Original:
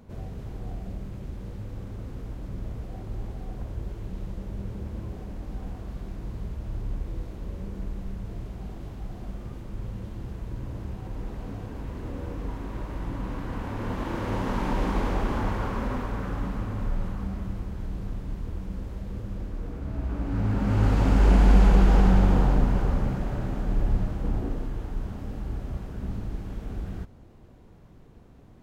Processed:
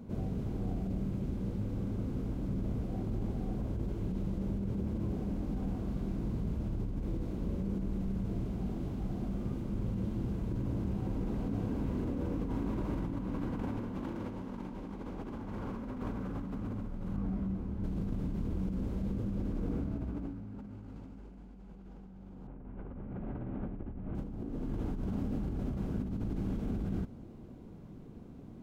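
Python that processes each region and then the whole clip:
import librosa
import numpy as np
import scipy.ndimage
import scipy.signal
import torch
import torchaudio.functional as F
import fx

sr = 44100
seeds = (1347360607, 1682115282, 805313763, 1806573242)

y = fx.chain(x, sr, fx.high_shelf(hz=3000.0, db=-9.5),
    fx.detune_double(cents=26), at=(17.16, 17.84))
y = fx.chain(y, sr, fx.lowpass(hz=2600.0, slope=24),
    fx.peak_eq(hz=180.0, db=-5.0, octaves=0.31),
    fx.doubler(ms=42.0, db=-9.5), at=(22.47, 24.15))
y = fx.peak_eq(y, sr, hz=230.0, db=11.0, octaves=1.9)
y = fx.notch(y, sr, hz=1800.0, q=13.0)
y = fx.over_compress(y, sr, threshold_db=-29.0, ratio=-1.0)
y = y * 10.0 ** (-8.5 / 20.0)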